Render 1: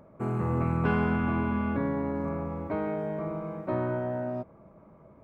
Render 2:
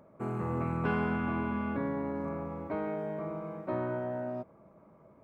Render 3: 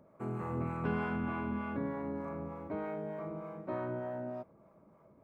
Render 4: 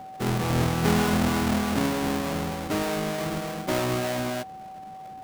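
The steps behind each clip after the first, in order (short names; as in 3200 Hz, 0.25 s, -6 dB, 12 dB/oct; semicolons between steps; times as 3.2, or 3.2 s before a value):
low shelf 97 Hz -9.5 dB; gain -3 dB
harmonic tremolo 3.3 Hz, depth 50%, crossover 520 Hz; gain -1.5 dB
half-waves squared off; whine 760 Hz -46 dBFS; gain +7.5 dB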